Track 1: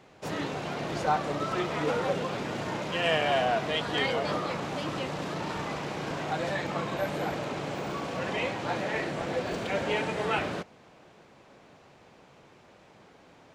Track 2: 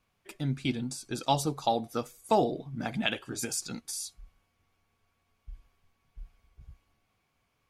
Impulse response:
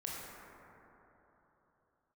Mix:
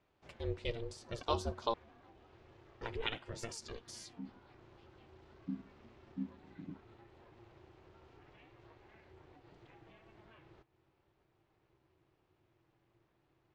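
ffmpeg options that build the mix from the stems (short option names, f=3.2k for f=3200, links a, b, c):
-filter_complex "[0:a]equalizer=f=100:w=1.5:g=8.5,acompressor=threshold=-37dB:ratio=5,flanger=delay=5.3:depth=3.8:regen=82:speed=0.35:shape=triangular,volume=-15dB[a];[1:a]volume=-4.5dB,asplit=3[b][c][d];[b]atrim=end=1.74,asetpts=PTS-STARTPTS,afade=t=out:st=1.736:d=0.004:c=hsin[e];[c]atrim=start=1.74:end=2.81,asetpts=PTS-STARTPTS,volume=0[f];[d]atrim=start=2.81,asetpts=PTS-STARTPTS,afade=t=in:d=0.004:c=hsin[g];[e][f][g]concat=n=3:v=0:a=1[h];[a][h]amix=inputs=2:normalize=0,lowpass=5k,asubboost=boost=3:cutoff=140,aeval=exprs='val(0)*sin(2*PI*230*n/s)':c=same"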